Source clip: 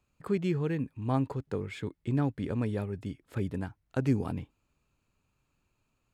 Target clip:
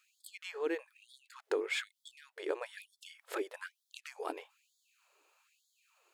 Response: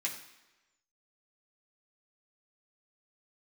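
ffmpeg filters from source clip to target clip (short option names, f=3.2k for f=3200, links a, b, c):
-af "acompressor=threshold=-37dB:ratio=6,afftfilt=real='re*gte(b*sr/1024,300*pow(3300/300,0.5+0.5*sin(2*PI*1.1*pts/sr)))':imag='im*gte(b*sr/1024,300*pow(3300/300,0.5+0.5*sin(2*PI*1.1*pts/sr)))':win_size=1024:overlap=0.75,volume=10.5dB"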